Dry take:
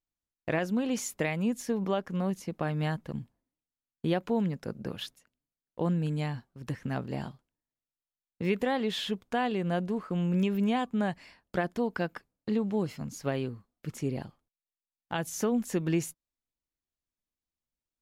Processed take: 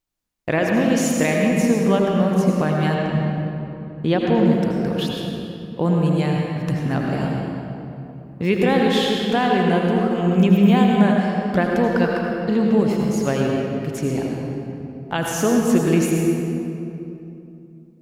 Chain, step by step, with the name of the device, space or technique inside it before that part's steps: stairwell (reverb RT60 3.0 s, pre-delay 74 ms, DRR -1 dB); 2.94–4.46 LPF 6500 Hz 12 dB/oct; gain +8.5 dB

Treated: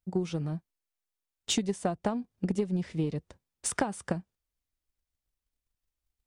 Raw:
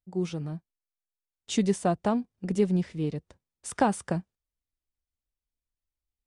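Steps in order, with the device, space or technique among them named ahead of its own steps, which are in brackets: drum-bus smash (transient shaper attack +8 dB, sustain +1 dB; compressor 6:1, threshold -26 dBFS, peak gain reduction 14.5 dB; soft clip -18 dBFS, distortion -19 dB); gain +1.5 dB

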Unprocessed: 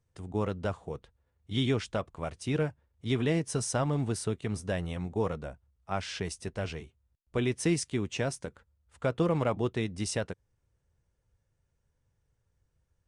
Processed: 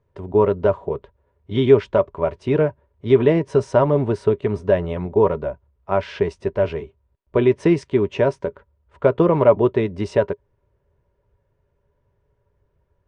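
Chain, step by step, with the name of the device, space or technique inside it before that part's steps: inside a cardboard box (LPF 2500 Hz 12 dB/oct; small resonant body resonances 410/580/960 Hz, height 14 dB, ringing for 60 ms); gain +7.5 dB

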